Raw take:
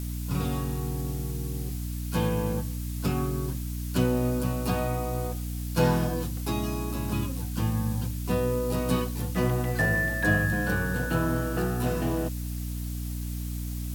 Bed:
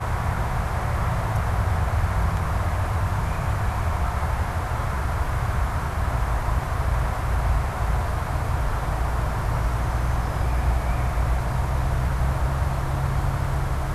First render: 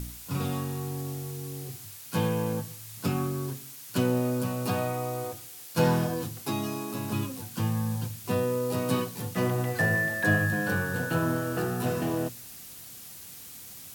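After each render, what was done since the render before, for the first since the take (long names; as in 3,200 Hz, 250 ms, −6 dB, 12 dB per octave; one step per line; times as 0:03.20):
hum removal 60 Hz, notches 7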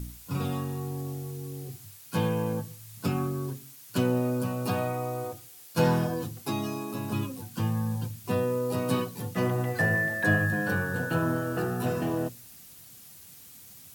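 broadband denoise 6 dB, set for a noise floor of −45 dBFS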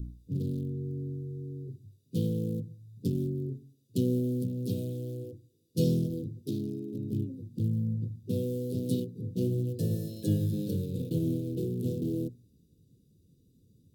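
adaptive Wiener filter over 41 samples
elliptic band-stop filter 440–3,500 Hz, stop band 40 dB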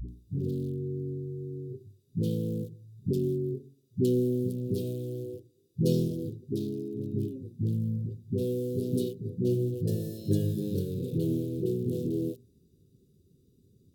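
hollow resonant body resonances 390/1,300 Hz, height 12 dB, ringing for 100 ms
all-pass dispersion highs, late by 86 ms, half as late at 330 Hz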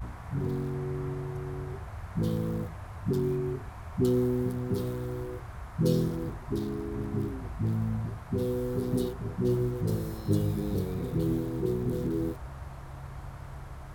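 mix in bed −18 dB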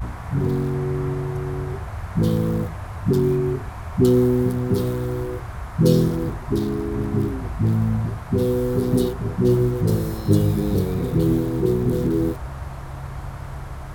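level +9.5 dB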